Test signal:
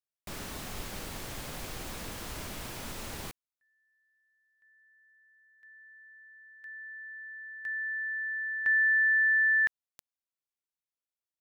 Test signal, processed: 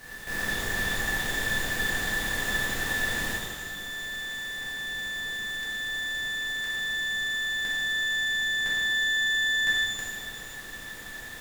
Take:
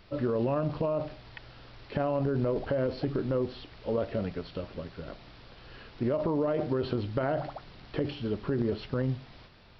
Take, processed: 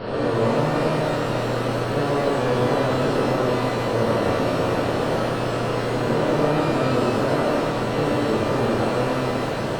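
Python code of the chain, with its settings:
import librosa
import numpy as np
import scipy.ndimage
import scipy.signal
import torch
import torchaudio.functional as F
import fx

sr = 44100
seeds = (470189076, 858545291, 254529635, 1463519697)

y = fx.bin_compress(x, sr, power=0.2)
y = fx.rev_shimmer(y, sr, seeds[0], rt60_s=1.3, semitones=12, shimmer_db=-8, drr_db=-8.5)
y = F.gain(torch.from_numpy(y), -8.5).numpy()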